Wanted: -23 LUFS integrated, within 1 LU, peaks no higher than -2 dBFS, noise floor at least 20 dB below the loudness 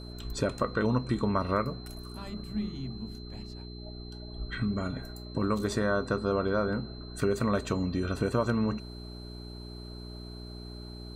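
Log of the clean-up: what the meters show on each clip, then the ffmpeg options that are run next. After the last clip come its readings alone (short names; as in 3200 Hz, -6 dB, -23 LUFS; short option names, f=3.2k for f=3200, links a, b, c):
hum 60 Hz; harmonics up to 420 Hz; hum level -40 dBFS; steady tone 4100 Hz; tone level -49 dBFS; loudness -31.0 LUFS; peak -14.5 dBFS; loudness target -23.0 LUFS
-> -af "bandreject=f=60:t=h:w=4,bandreject=f=120:t=h:w=4,bandreject=f=180:t=h:w=4,bandreject=f=240:t=h:w=4,bandreject=f=300:t=h:w=4,bandreject=f=360:t=h:w=4,bandreject=f=420:t=h:w=4"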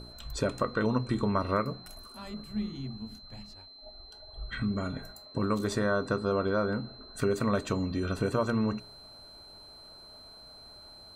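hum none; steady tone 4100 Hz; tone level -49 dBFS
-> -af "bandreject=f=4.1k:w=30"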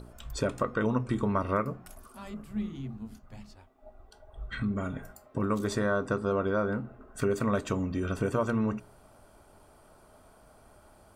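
steady tone none; loudness -31.0 LUFS; peak -15.0 dBFS; loudness target -23.0 LUFS
-> -af "volume=8dB"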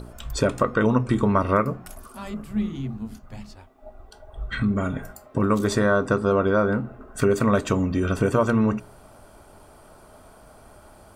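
loudness -23.0 LUFS; peak -7.0 dBFS; noise floor -50 dBFS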